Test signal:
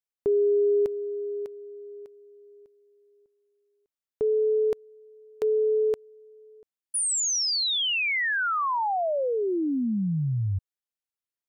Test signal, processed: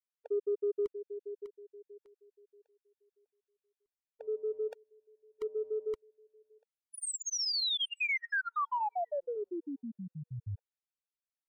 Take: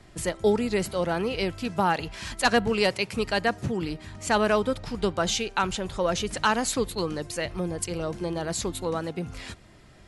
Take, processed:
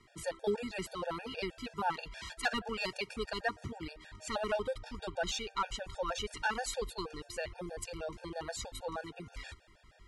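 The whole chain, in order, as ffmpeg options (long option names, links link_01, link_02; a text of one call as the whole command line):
ffmpeg -i in.wav -filter_complex "[0:a]asubboost=boost=5.5:cutoff=66,asplit=2[link_01][link_02];[link_02]highpass=frequency=720:poles=1,volume=9dB,asoftclip=type=tanh:threshold=-9dB[link_03];[link_01][link_03]amix=inputs=2:normalize=0,lowpass=frequency=4500:poles=1,volume=-6dB,afftfilt=real='re*gt(sin(2*PI*6.3*pts/sr)*(1-2*mod(floor(b*sr/1024/470),2)),0)':imag='im*gt(sin(2*PI*6.3*pts/sr)*(1-2*mod(floor(b*sr/1024/470),2)),0)':win_size=1024:overlap=0.75,volume=-8dB" out.wav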